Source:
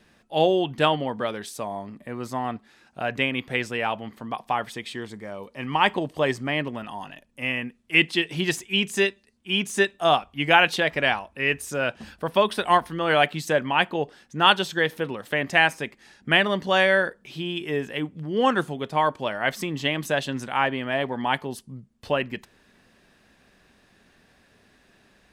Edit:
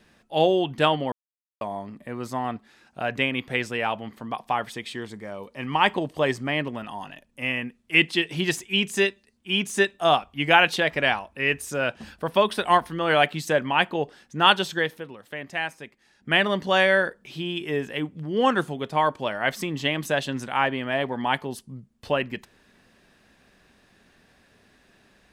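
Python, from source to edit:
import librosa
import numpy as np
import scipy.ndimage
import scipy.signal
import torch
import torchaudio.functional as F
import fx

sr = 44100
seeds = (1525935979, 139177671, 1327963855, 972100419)

y = fx.edit(x, sr, fx.silence(start_s=1.12, length_s=0.49),
    fx.fade_down_up(start_s=14.73, length_s=1.7, db=-10.0, fade_s=0.31), tone=tone)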